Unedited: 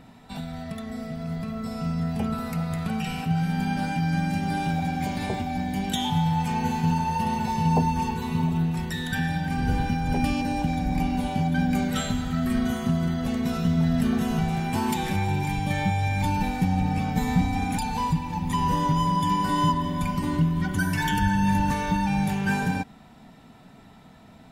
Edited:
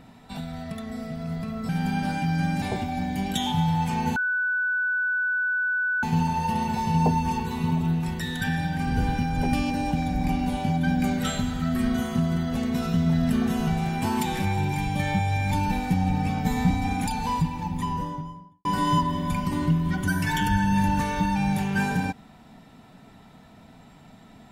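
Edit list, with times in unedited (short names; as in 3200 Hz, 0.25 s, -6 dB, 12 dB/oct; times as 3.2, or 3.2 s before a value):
1.69–3.43 cut
4.36–5.2 cut
6.74 add tone 1490 Hz -22 dBFS 1.87 s
18.14–19.36 studio fade out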